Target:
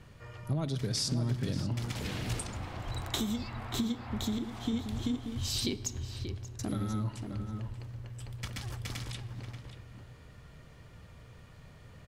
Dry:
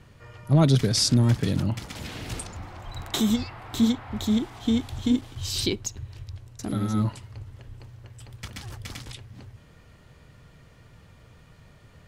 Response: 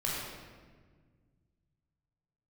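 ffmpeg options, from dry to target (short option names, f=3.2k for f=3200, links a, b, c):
-filter_complex "[0:a]acompressor=threshold=-28dB:ratio=6,asplit=2[a][b];[b]adelay=583.1,volume=-7dB,highshelf=f=4k:g=-13.1[c];[a][c]amix=inputs=2:normalize=0,asplit=2[d][e];[1:a]atrim=start_sample=2205[f];[e][f]afir=irnorm=-1:irlink=0,volume=-20dB[g];[d][g]amix=inputs=2:normalize=0,volume=-2.5dB"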